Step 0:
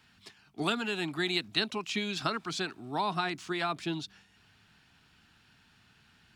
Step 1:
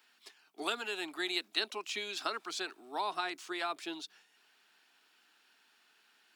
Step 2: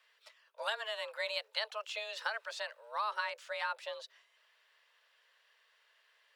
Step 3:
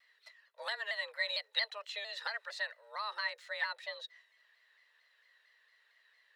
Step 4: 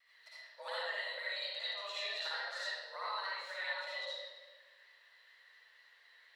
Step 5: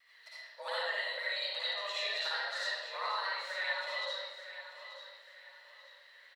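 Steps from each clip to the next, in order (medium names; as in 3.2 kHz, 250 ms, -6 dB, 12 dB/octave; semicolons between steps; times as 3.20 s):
high-pass 340 Hz 24 dB/octave; treble shelf 11 kHz +11.5 dB; trim -4 dB
frequency shift +220 Hz; tone controls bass -13 dB, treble -9 dB
small resonant body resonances 1.9/4 kHz, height 17 dB, ringing for 30 ms; vibrato with a chosen wave saw down 4.4 Hz, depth 100 cents; trim -5 dB
compression, threshold -42 dBFS, peak gain reduction 14 dB; reverberation RT60 1.3 s, pre-delay 52 ms, DRR -8 dB; trim -3 dB
feedback delay 885 ms, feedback 34%, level -12 dB; trim +4 dB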